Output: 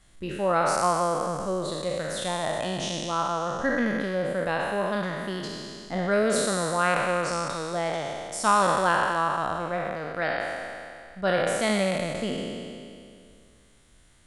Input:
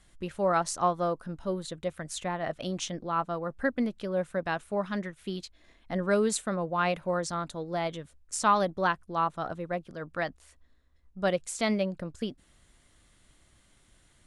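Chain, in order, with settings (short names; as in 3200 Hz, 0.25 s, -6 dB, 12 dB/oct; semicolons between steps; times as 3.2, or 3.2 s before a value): spectral trails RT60 2.35 s; dynamic EQ 6800 Hz, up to -6 dB, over -45 dBFS, Q 1.8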